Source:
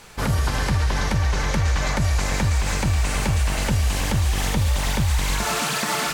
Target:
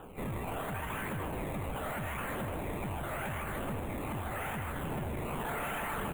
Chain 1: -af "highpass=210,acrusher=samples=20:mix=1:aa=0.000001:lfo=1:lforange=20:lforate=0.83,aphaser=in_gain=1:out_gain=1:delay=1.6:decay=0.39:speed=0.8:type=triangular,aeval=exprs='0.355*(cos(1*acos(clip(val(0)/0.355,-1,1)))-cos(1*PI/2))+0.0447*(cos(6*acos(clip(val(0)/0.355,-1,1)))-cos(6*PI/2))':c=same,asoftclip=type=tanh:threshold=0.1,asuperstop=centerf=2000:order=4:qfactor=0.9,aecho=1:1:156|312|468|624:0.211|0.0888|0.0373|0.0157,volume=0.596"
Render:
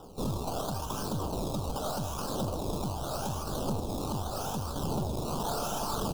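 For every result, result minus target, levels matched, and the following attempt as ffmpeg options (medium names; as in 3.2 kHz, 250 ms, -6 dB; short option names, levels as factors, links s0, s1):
2 kHz band -14.5 dB; saturation: distortion -7 dB; echo-to-direct -6 dB
-af "highpass=210,acrusher=samples=20:mix=1:aa=0.000001:lfo=1:lforange=20:lforate=0.83,aphaser=in_gain=1:out_gain=1:delay=1.6:decay=0.39:speed=0.8:type=triangular,aeval=exprs='0.355*(cos(1*acos(clip(val(0)/0.355,-1,1)))-cos(1*PI/2))+0.0447*(cos(6*acos(clip(val(0)/0.355,-1,1)))-cos(6*PI/2))':c=same,asoftclip=type=tanh:threshold=0.1,asuperstop=centerf=5200:order=4:qfactor=0.9,aecho=1:1:156|312|468|624:0.211|0.0888|0.0373|0.0157,volume=0.596"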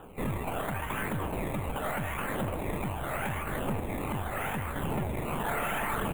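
saturation: distortion -7 dB; echo-to-direct -6 dB
-af "highpass=210,acrusher=samples=20:mix=1:aa=0.000001:lfo=1:lforange=20:lforate=0.83,aphaser=in_gain=1:out_gain=1:delay=1.6:decay=0.39:speed=0.8:type=triangular,aeval=exprs='0.355*(cos(1*acos(clip(val(0)/0.355,-1,1)))-cos(1*PI/2))+0.0447*(cos(6*acos(clip(val(0)/0.355,-1,1)))-cos(6*PI/2))':c=same,asoftclip=type=tanh:threshold=0.0335,asuperstop=centerf=5200:order=4:qfactor=0.9,aecho=1:1:156|312|468|624:0.211|0.0888|0.0373|0.0157,volume=0.596"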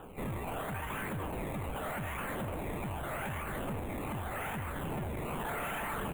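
echo-to-direct -6 dB
-af "highpass=210,acrusher=samples=20:mix=1:aa=0.000001:lfo=1:lforange=20:lforate=0.83,aphaser=in_gain=1:out_gain=1:delay=1.6:decay=0.39:speed=0.8:type=triangular,aeval=exprs='0.355*(cos(1*acos(clip(val(0)/0.355,-1,1)))-cos(1*PI/2))+0.0447*(cos(6*acos(clip(val(0)/0.355,-1,1)))-cos(6*PI/2))':c=same,asoftclip=type=tanh:threshold=0.0335,asuperstop=centerf=5200:order=4:qfactor=0.9,aecho=1:1:156|312|468|624|780:0.422|0.177|0.0744|0.0312|0.0131,volume=0.596"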